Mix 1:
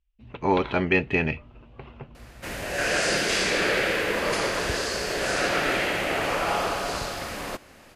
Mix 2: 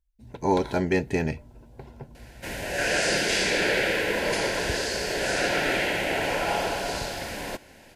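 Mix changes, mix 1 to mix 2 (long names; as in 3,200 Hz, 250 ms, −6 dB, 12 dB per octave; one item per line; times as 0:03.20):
speech: remove low-pass with resonance 2,800 Hz, resonance Q 4.2
master: add Butterworth band-reject 1,200 Hz, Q 3.7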